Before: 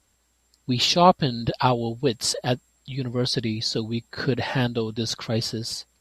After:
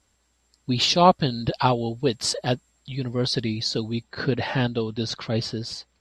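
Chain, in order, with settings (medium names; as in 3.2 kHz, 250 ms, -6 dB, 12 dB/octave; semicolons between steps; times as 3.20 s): low-pass 8.5 kHz 12 dB/octave, from 4.03 s 5 kHz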